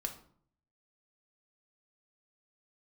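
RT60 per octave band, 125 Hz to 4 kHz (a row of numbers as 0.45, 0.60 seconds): 0.85, 0.70, 0.55, 0.55, 0.40, 0.35 seconds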